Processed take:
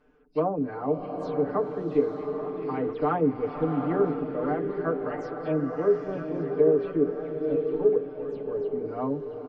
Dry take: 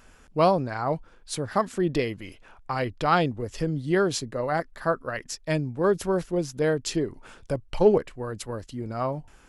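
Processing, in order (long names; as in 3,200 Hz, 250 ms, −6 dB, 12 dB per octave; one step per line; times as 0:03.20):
every frequency bin delayed by itself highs early, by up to 118 ms
head-to-tape spacing loss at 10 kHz 37 dB
hollow resonant body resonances 270/420 Hz, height 15 dB, ringing for 50 ms
automatic gain control gain up to 4.5 dB
treble cut that deepens with the level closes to 1,500 Hz, closed at −11.5 dBFS
low-shelf EQ 210 Hz −9 dB
mains-hum notches 60/120/180/240/300/360/420 Hz
comb filter 6.7 ms, depth 76%
echo through a band-pass that steps 667 ms, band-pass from 2,800 Hz, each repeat −0.7 octaves, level −6.5 dB
slow-attack reverb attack 860 ms, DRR 4.5 dB
level −9 dB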